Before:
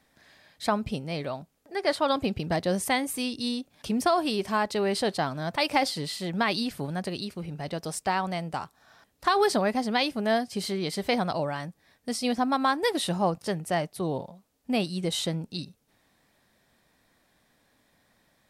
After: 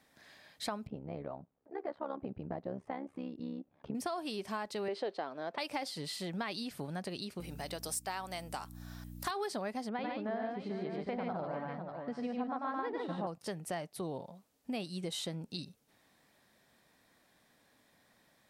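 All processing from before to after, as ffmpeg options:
-filter_complex "[0:a]asettb=1/sr,asplit=3[a][b][c];[a]atrim=end=0.874[d];[b]atrim=start=0.87:end=3.95,asetpts=PTS-STARTPTS,afade=t=in:d=0.004:c=qsin,afade=t=out:st=3.076:d=0.004:c=qsin,lowpass=1.1k,tremolo=f=69:d=0.857[e];[c]atrim=start=3.946[f];[d][e]acrossfade=d=0.004:c1=hsin:c2=qsin[g];[g][f]acrossfade=d=0.004:c1=qsin:c2=hsin,asettb=1/sr,asplit=3[h][i][j];[h]atrim=end=4.884[k];[i]atrim=start=4.88:end=5.58,asetpts=PTS-STARTPTS,afade=t=in:d=0.004:c=qsin,afade=t=out:st=0.696:d=0.004:c=qsin,highpass=330,lowpass=3.7k,equalizer=f=420:w=1:g=8.5[l];[j]atrim=start=5.576[m];[k][l]acrossfade=d=0.004:c1=hsin:c2=qsin[n];[n][m]acrossfade=d=0.004:c1=qsin:c2=hsin,asettb=1/sr,asplit=3[o][p][q];[o]atrim=end=7.404[r];[p]atrim=start=7.4:end=9.31,asetpts=PTS-STARTPTS,afade=t=in:d=0.004:c=qsin,afade=t=out:st=1.906:d=0.004:c=qsin,aemphasis=mode=production:type=bsi,aeval=exprs='val(0)+0.01*(sin(2*PI*60*n/s)+sin(2*PI*2*60*n/s)/2+sin(2*PI*3*60*n/s)/3+sin(2*PI*4*60*n/s)/4+sin(2*PI*5*60*n/s)/5)':c=same[s];[q]atrim=start=9.306[t];[r][s]acrossfade=d=0.004:c1=hsin:c2=qsin[u];[u][t]acrossfade=d=0.004:c1=qsin:c2=hsin,asettb=1/sr,asplit=3[v][w][x];[v]atrim=end=9.894[y];[w]atrim=start=9.89:end=13.27,asetpts=PTS-STARTPTS,afade=t=in:d=0.004:c=qsin,afade=t=out:st=3.376:d=0.004:c=qsin,lowpass=1.6k,aecho=1:1:95|144|442|593:0.708|0.708|0.2|0.237,atrim=end_sample=149058[z];[x]atrim=start=13.266[aa];[y][z]acrossfade=d=0.004:c1=hsin:c2=qsin[ab];[ab][aa]acrossfade=d=0.004:c1=qsin:c2=hsin,lowshelf=f=67:g=-11.5,acompressor=threshold=-37dB:ratio=3,volume=-1.5dB"

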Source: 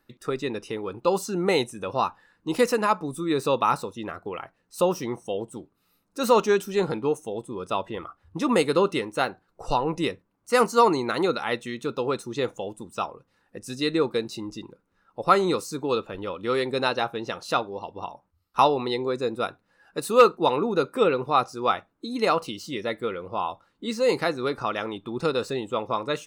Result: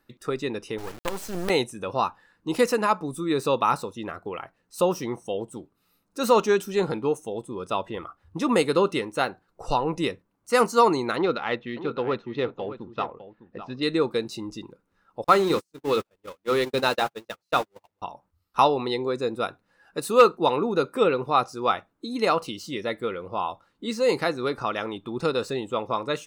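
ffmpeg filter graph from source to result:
-filter_complex "[0:a]asettb=1/sr,asplit=3[a][b][c];[a]atrim=end=0.784[d];[b]atrim=start=0.78:end=1.5,asetpts=PTS-STARTPTS,afade=t=in:d=0.004:c=qsin,afade=t=out:st=0.716:d=0.004:c=qsin,acompressor=threshold=-22dB:ratio=4:attack=3.2:release=140:knee=1:detection=peak,acrusher=bits=4:dc=4:mix=0:aa=0.000001[e];[c]atrim=start=1.496[f];[d][e]acrossfade=d=0.004:c1=hsin:c2=qsin[g];[g][f]acrossfade=d=0.004:c1=qsin:c2=hsin,asettb=1/sr,asplit=3[h][i][j];[h]atrim=end=11.164[k];[i]atrim=start=11.16:end=13.83,asetpts=PTS-STARTPTS,afade=t=in:d=0.004:c=qsin,afade=t=out:st=2.666:d=0.004:c=qsin,aecho=1:1:605:0.237,atrim=end_sample=117747,adynamicsmooth=sensitivity=4.5:basefreq=2.5k,lowpass=f=4.3k:w=0.5412,lowpass=f=4.3k:w=1.3066[l];[j]atrim=start=13.826[m];[k][l]acrossfade=d=0.004:c1=hsin:c2=qsin[n];[n][m]acrossfade=d=0.004:c1=qsin:c2=hsin,asettb=1/sr,asplit=3[o][p][q];[o]atrim=end=15.244[r];[p]atrim=start=15.24:end=18.02,asetpts=PTS-STARTPTS,afade=t=in:d=0.004:c=qsin,afade=t=out:st=2.776:d=0.004:c=qsin,aeval=exprs='val(0)+0.5*0.0335*sgn(val(0))':c=same,bandreject=f=60:t=h:w=6,bandreject=f=120:t=h:w=6,bandreject=f=180:t=h:w=6,bandreject=f=240:t=h:w=6,bandreject=f=300:t=h:w=6,bandreject=f=360:t=h:w=6,agate=range=-49dB:threshold=-26dB:ratio=16:release=100:detection=peak[s];[q]atrim=start=18.016[t];[r][s]acrossfade=d=0.004:c1=hsin:c2=qsin[u];[u][t]acrossfade=d=0.004:c1=qsin:c2=hsin"

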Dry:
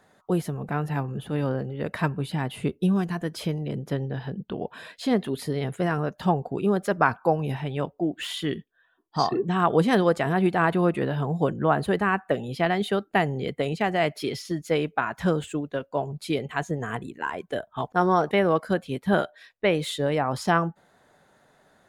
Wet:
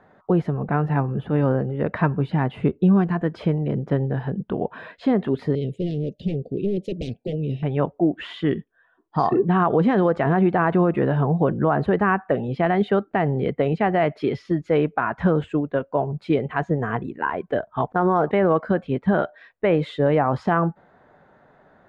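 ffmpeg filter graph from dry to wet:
-filter_complex "[0:a]asettb=1/sr,asplit=3[a][b][c];[a]atrim=end=5.554[d];[b]atrim=start=5.55:end=7.63,asetpts=PTS-STARTPTS,afade=t=in:d=0.004:c=qsin,afade=t=out:st=2.076:d=0.004:c=qsin,tiltshelf=f=1.5k:g=-3.5,aeval=exprs='0.0794*(abs(mod(val(0)/0.0794+3,4)-2)-1)':c=same,asuperstop=centerf=1200:order=8:qfactor=0.51[e];[c]atrim=start=7.626[f];[d][e]acrossfade=d=0.004:c1=hsin:c2=qsin[g];[g][f]acrossfade=d=0.004:c1=qsin:c2=hsin,lowpass=1.7k,alimiter=limit=-16dB:level=0:latency=1:release=59,volume=6.5dB"

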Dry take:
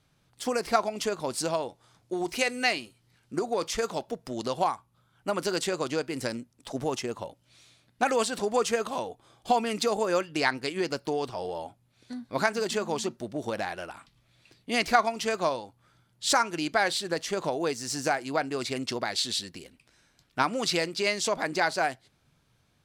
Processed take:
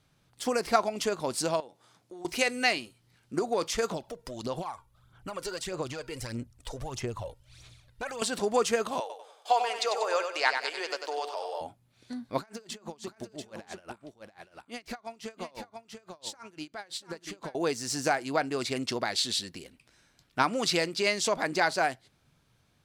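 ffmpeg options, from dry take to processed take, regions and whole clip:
-filter_complex "[0:a]asettb=1/sr,asplit=3[a][b][c];[a]atrim=end=1.604[d];[b]atrim=start=1.6:end=2.25,asetpts=PTS-STARTPTS,afade=t=in:d=0.004:c=qsin,afade=t=out:st=0.646:d=0.004:c=qsin,highpass=160,acompressor=threshold=-47dB:ratio=3:attack=3.2:release=140:knee=1:detection=peak[e];[c]atrim=start=2.246[f];[d][e]acrossfade=d=0.004:c1=hsin:c2=qsin[g];[g][f]acrossfade=d=0.004:c1=qsin:c2=hsin,asettb=1/sr,asplit=3[h][i][j];[h]atrim=end=3.914[k];[i]atrim=start=3.91:end=8.22,asetpts=PTS-STARTPTS,afade=t=in:d=0.004:c=qsin,afade=t=out:st=4.306:d=0.004:c=qsin,asubboost=boost=10.5:cutoff=78,acompressor=threshold=-36dB:ratio=3:attack=3.2:release=140:knee=1:detection=peak,aphaser=in_gain=1:out_gain=1:delay=2.2:decay=0.57:speed=1.6:type=sinusoidal[l];[j]atrim=start=8.216[m];[k][l]acrossfade=d=0.004:c1=hsin:c2=qsin[n];[n][m]acrossfade=d=0.004:c1=qsin:c2=hsin,asettb=1/sr,asplit=3[o][p][q];[o]atrim=end=9.004[r];[p]atrim=start=9:end=11.61,asetpts=PTS-STARTPTS,afade=t=in:d=0.004:c=qsin,afade=t=out:st=2.606:d=0.004:c=qsin,acrossover=split=7600[s][t];[t]acompressor=threshold=-56dB:ratio=4:attack=1:release=60[u];[s][u]amix=inputs=2:normalize=0,highpass=f=520:w=0.5412,highpass=f=520:w=1.3066,aecho=1:1:95|190|285|380|475:0.447|0.179|0.0715|0.0286|0.0114,atrim=end_sample=115101[v];[q]atrim=start=11.606[w];[r][v]acrossfade=d=0.004:c1=hsin:c2=qsin[x];[x][w]acrossfade=d=0.004:c1=qsin:c2=hsin,asettb=1/sr,asplit=3[y][z][aa];[y]atrim=end=12.384[ab];[z]atrim=start=12.38:end=17.55,asetpts=PTS-STARTPTS,afade=t=in:d=0.004:c=qsin,afade=t=out:st=5.166:d=0.004:c=qsin,acompressor=threshold=-32dB:ratio=12:attack=3.2:release=140:knee=1:detection=peak,aecho=1:1:690:0.531,atrim=end_sample=227997,aeval=exprs='val(0)*pow(10,-23*(0.5-0.5*cos(2*PI*5.9*n/s))/20)':c=same[ac];[aa]atrim=start=17.546[ad];[ab][ac]acrossfade=d=0.004:c1=hsin:c2=qsin[ae];[ae][ad]acrossfade=d=0.004:c1=qsin:c2=hsin"

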